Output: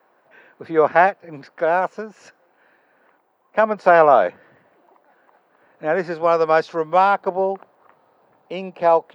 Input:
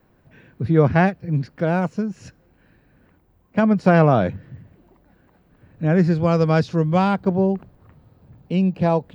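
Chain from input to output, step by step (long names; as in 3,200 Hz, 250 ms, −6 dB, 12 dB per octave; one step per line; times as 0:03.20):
high-pass filter 450 Hz 12 dB per octave
parametric band 900 Hz +11.5 dB 2.6 octaves
level −3.5 dB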